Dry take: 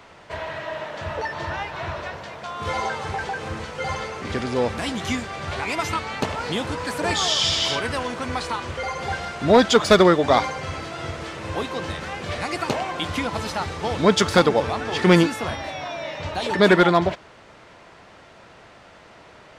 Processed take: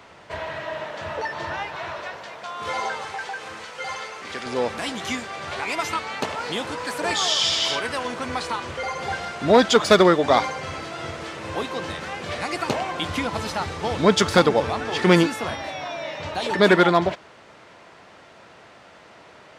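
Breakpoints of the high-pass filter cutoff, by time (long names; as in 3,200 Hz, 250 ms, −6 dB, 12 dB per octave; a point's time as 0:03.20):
high-pass filter 6 dB per octave
60 Hz
from 0:00.91 190 Hz
from 0:01.77 440 Hz
from 0:03.05 1,000 Hz
from 0:04.46 330 Hz
from 0:08.05 150 Hz
from 0:12.66 53 Hz
from 0:14.86 140 Hz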